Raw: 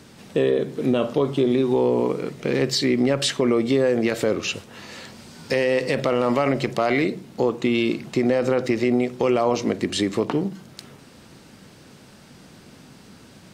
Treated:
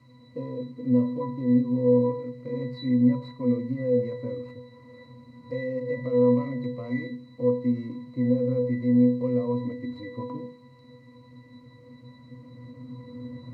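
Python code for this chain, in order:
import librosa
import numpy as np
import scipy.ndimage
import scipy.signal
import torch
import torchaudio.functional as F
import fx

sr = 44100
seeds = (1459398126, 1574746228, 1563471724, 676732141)

y = scipy.ndimage.median_filter(x, 15, mode='constant')
y = fx.recorder_agc(y, sr, target_db=-17.5, rise_db_per_s=5.1, max_gain_db=30)
y = fx.high_shelf(y, sr, hz=8200.0, db=10.5)
y = fx.dmg_noise_colour(y, sr, seeds[0], colour='white', level_db=-40.0)
y = fx.octave_resonator(y, sr, note='B', decay_s=0.37)
y = fx.end_taper(y, sr, db_per_s=230.0)
y = y * 10.0 ** (6.0 / 20.0)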